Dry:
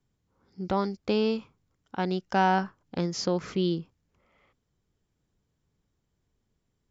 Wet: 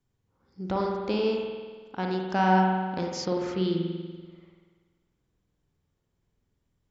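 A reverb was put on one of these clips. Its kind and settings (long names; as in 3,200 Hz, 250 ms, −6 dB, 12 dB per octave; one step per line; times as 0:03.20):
spring reverb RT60 1.5 s, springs 48 ms, chirp 40 ms, DRR 0 dB
level −2.5 dB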